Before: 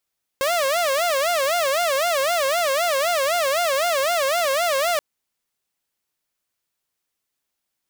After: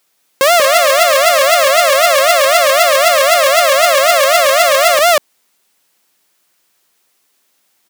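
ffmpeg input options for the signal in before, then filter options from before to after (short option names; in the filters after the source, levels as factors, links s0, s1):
-f lavfi -i "aevalsrc='0.158*(2*mod((620*t-87/(2*PI*3.9)*sin(2*PI*3.9*t)),1)-1)':d=4.58:s=44100"
-filter_complex "[0:a]highpass=190,asplit=2[s0][s1];[s1]aecho=0:1:188:0.631[s2];[s0][s2]amix=inputs=2:normalize=0,alimiter=level_in=7.94:limit=0.891:release=50:level=0:latency=1"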